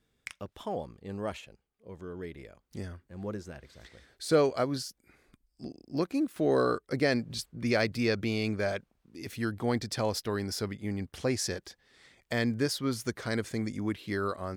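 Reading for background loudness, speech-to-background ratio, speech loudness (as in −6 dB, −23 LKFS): −47.0 LKFS, 15.0 dB, −32.0 LKFS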